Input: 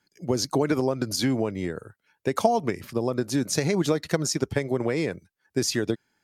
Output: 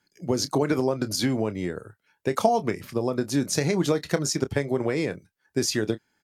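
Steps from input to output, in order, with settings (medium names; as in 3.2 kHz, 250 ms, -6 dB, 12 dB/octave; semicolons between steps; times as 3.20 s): doubling 28 ms -13 dB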